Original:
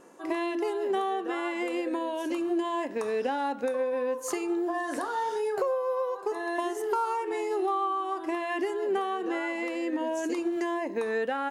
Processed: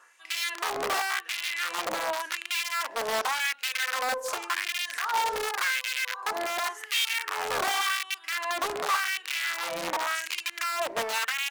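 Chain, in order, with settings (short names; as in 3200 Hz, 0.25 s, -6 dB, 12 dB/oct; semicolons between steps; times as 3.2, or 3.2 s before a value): wrapped overs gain 24.5 dB; LFO high-pass sine 0.89 Hz 590–2600 Hz; Doppler distortion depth 0.32 ms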